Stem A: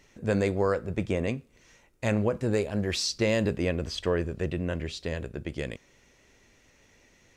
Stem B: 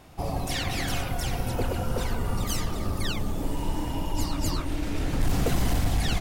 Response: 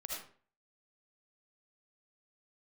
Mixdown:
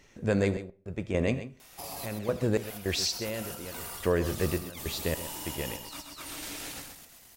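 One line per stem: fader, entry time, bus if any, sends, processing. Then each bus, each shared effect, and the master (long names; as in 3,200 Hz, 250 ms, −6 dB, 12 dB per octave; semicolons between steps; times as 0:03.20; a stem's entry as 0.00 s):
+1.0 dB, 0.00 s, send −13.5 dB, echo send −11.5 dB, sample-and-hold tremolo, depth 100%
−4.0 dB, 1.60 s, send −18 dB, echo send −13 dB, spectral tilt +4.5 dB per octave; compressor whose output falls as the input rises −33 dBFS, ratio −0.5; automatic ducking −9 dB, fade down 2.00 s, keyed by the first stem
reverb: on, RT60 0.45 s, pre-delay 35 ms
echo: single-tap delay 130 ms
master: no processing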